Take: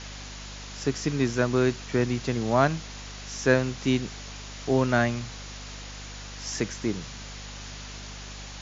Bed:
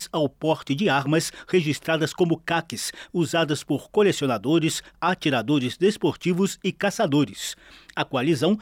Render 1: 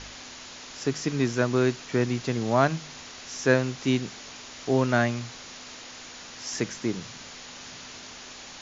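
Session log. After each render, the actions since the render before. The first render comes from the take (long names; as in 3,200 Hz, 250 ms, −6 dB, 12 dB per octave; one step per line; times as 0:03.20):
hum removal 50 Hz, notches 4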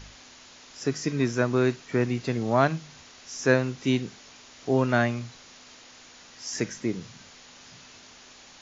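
noise reduction from a noise print 7 dB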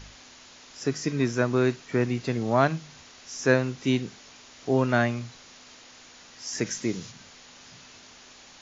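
0:06.65–0:07.10: high-shelf EQ 3,500 Hz → 4,600 Hz +10.5 dB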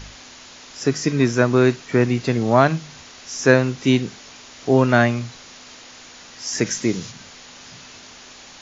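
level +7.5 dB
brickwall limiter −1 dBFS, peak gain reduction 2.5 dB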